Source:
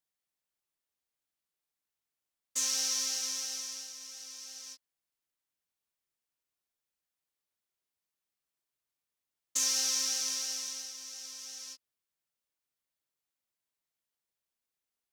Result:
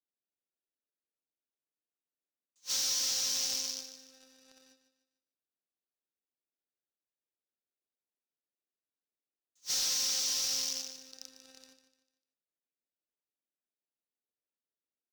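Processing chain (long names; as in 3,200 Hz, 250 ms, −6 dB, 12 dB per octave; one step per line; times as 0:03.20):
adaptive Wiener filter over 41 samples
high-pass filter 220 Hz 24 dB per octave
parametric band 3,900 Hz +9.5 dB 1.2 octaves
in parallel at +1 dB: compressor whose output falls as the input rises −36 dBFS, ratio −1
on the sum: leveller curve on the samples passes 2
soft clipping −22.5 dBFS, distortion −10 dB
on a send: repeating echo 149 ms, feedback 38%, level −11 dB
on the sum: level that may rise only so fast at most 450 dB per second
level −6.5 dB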